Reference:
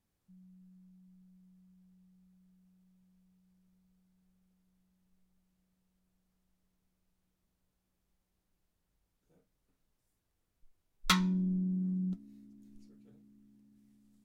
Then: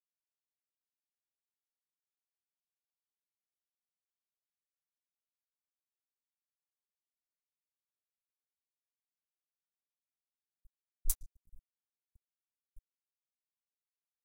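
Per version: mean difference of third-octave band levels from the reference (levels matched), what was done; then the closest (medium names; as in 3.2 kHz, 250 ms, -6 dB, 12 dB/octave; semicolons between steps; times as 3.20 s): 5.5 dB: inverse Chebyshev band-stop 220–1900 Hz, stop band 80 dB; crossover distortion -54.5 dBFS; trim +10 dB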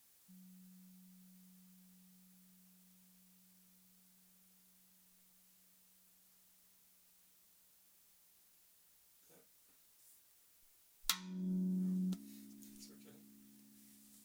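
8.5 dB: tilt EQ +4 dB/octave; compression 20:1, threshold -42 dBFS, peak gain reduction 26.5 dB; trim +7.5 dB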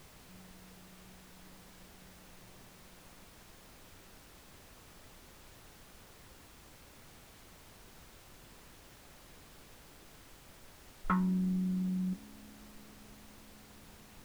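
14.0 dB: low-pass 1.4 kHz 24 dB/octave; added noise pink -56 dBFS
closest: first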